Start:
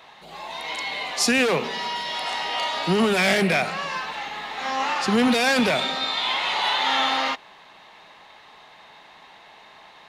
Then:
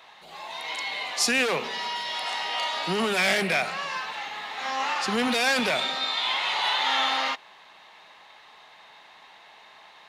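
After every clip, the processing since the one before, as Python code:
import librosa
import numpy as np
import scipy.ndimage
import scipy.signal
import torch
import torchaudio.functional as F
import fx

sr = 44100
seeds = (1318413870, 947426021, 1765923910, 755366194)

y = fx.low_shelf(x, sr, hz=440.0, db=-8.5)
y = y * 10.0 ** (-1.5 / 20.0)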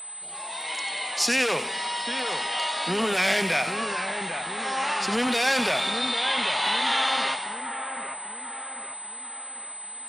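y = fx.echo_split(x, sr, split_hz=2200.0, low_ms=793, high_ms=94, feedback_pct=52, wet_db=-8.0)
y = y + 10.0 ** (-36.0 / 20.0) * np.sin(2.0 * np.pi * 8100.0 * np.arange(len(y)) / sr)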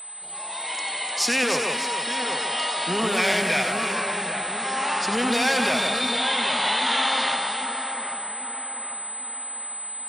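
y = fx.echo_alternate(x, sr, ms=150, hz=1700.0, feedback_pct=68, wet_db=-3.5)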